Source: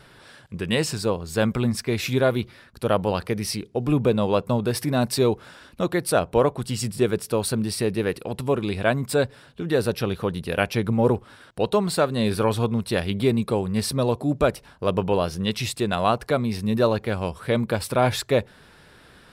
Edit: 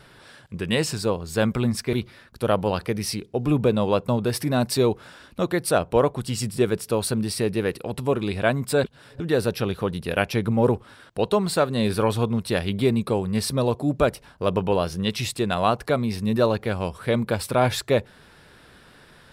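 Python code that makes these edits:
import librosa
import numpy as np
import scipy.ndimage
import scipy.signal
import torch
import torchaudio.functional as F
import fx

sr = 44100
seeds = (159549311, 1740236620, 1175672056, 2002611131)

y = fx.edit(x, sr, fx.cut(start_s=1.93, length_s=0.41),
    fx.reverse_span(start_s=9.25, length_s=0.36), tone=tone)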